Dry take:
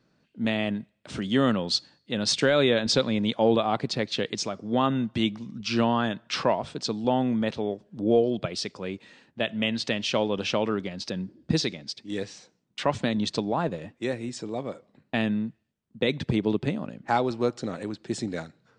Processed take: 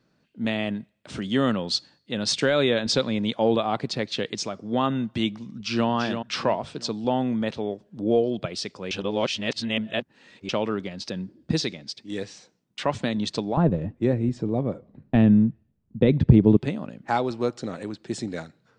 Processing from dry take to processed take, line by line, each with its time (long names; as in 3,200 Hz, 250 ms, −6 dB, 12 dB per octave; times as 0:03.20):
0:05.45–0:05.88: delay throw 340 ms, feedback 35%, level −7 dB
0:08.91–0:10.49: reverse
0:13.57–0:16.57: spectral tilt −4.5 dB per octave